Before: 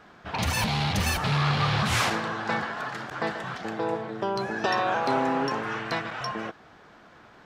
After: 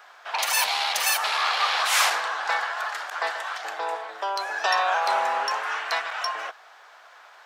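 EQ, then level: high-pass 660 Hz 24 dB/octave; treble shelf 7.9 kHz +9 dB; +4.0 dB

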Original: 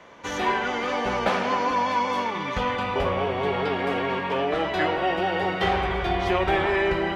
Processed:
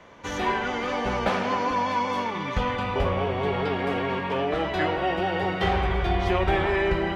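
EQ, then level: bass shelf 150 Hz +9 dB; -2.0 dB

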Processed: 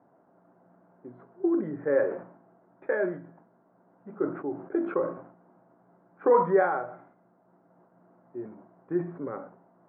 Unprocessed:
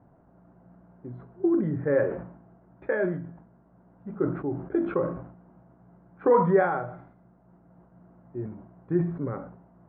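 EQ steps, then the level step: band-pass 300–2300 Hz; 0.0 dB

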